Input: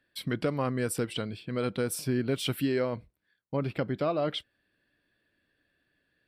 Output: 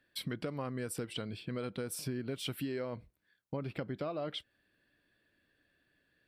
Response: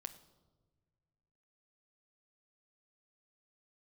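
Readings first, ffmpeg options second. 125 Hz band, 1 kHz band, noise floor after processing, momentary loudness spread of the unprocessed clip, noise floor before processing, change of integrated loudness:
−8.0 dB, −9.0 dB, −78 dBFS, 6 LU, −78 dBFS, −8.5 dB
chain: -af "acompressor=threshold=-36dB:ratio=4"

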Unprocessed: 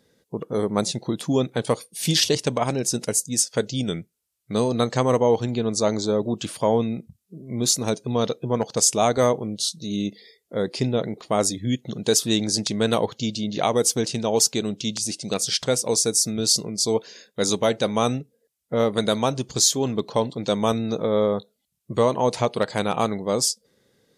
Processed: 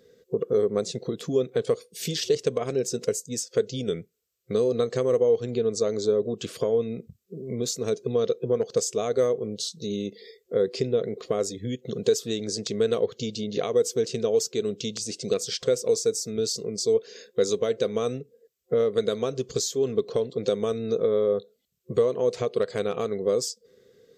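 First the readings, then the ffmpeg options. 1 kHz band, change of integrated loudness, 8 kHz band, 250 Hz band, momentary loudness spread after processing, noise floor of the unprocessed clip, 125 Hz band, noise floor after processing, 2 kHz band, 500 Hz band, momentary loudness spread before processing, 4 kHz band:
−12.5 dB, −3.5 dB, −10.0 dB, −7.0 dB, 8 LU, −75 dBFS, −7.5 dB, −68 dBFS, −8.5 dB, 0.0 dB, 8 LU, −8.5 dB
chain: -af "acompressor=threshold=-30dB:ratio=3,superequalizer=7b=3.55:9b=0.355:16b=0.316"

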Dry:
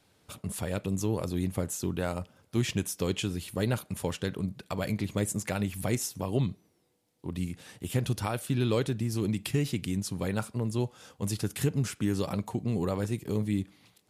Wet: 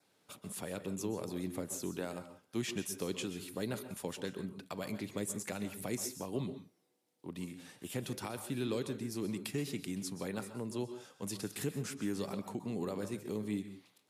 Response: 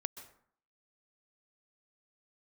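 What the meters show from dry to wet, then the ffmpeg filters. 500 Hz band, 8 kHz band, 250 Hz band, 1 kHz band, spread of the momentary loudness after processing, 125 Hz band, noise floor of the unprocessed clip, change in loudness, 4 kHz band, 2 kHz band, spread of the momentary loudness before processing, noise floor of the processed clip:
−6.5 dB, −5.0 dB, −7.5 dB, −8.0 dB, 7 LU, −13.5 dB, −68 dBFS, −8.0 dB, −6.5 dB, −7.0 dB, 7 LU, −74 dBFS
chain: -filter_complex "[0:a]acrossover=split=410|3000[link_01][link_02][link_03];[link_02]acompressor=threshold=-35dB:ratio=6[link_04];[link_01][link_04][link_03]amix=inputs=3:normalize=0,adynamicequalizer=threshold=0.00112:dfrequency=3000:dqfactor=4.8:tfrequency=3000:tqfactor=4.8:attack=5:release=100:ratio=0.375:range=2:mode=cutabove:tftype=bell,highpass=200[link_05];[1:a]atrim=start_sample=2205,afade=type=out:start_time=0.24:duration=0.01,atrim=end_sample=11025[link_06];[link_05][link_06]afir=irnorm=-1:irlink=0,volume=-4dB"

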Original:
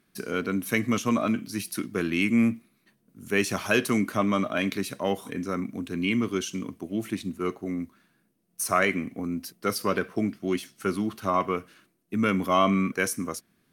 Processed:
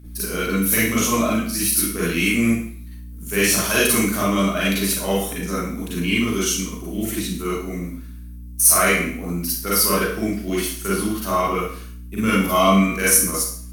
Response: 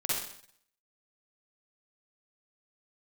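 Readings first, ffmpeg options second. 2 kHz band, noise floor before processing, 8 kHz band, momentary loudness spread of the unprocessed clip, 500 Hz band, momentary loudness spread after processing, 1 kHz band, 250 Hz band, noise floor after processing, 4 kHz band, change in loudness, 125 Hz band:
+7.0 dB, −70 dBFS, +17.5 dB, 10 LU, +5.5 dB, 14 LU, +5.5 dB, +5.0 dB, −36 dBFS, +11.0 dB, +8.0 dB, +7.0 dB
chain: -filter_complex "[0:a]acontrast=49,aeval=exprs='val(0)+0.0224*(sin(2*PI*60*n/s)+sin(2*PI*2*60*n/s)/2+sin(2*PI*3*60*n/s)/3+sin(2*PI*4*60*n/s)/4+sin(2*PI*5*60*n/s)/5)':channel_layout=same,aemphasis=mode=production:type=75kf[link_01];[1:a]atrim=start_sample=2205,asetrate=52920,aresample=44100[link_02];[link_01][link_02]afir=irnorm=-1:irlink=0,volume=-6dB"

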